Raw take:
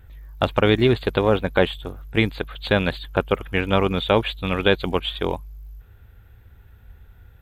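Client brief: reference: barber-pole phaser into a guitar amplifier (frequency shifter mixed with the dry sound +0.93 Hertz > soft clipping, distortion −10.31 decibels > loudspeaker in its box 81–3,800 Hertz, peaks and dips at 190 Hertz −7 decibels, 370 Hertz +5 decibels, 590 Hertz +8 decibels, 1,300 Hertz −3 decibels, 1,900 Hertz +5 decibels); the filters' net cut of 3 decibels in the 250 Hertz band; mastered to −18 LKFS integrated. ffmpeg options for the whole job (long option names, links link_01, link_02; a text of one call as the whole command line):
ffmpeg -i in.wav -filter_complex "[0:a]equalizer=frequency=250:width_type=o:gain=-5.5,asplit=2[link_01][link_02];[link_02]afreqshift=0.93[link_03];[link_01][link_03]amix=inputs=2:normalize=1,asoftclip=threshold=-19.5dB,highpass=81,equalizer=frequency=190:width_type=q:width=4:gain=-7,equalizer=frequency=370:width_type=q:width=4:gain=5,equalizer=frequency=590:width_type=q:width=4:gain=8,equalizer=frequency=1300:width_type=q:width=4:gain=-3,equalizer=frequency=1900:width_type=q:width=4:gain=5,lowpass=frequency=3800:width=0.5412,lowpass=frequency=3800:width=1.3066,volume=9.5dB" out.wav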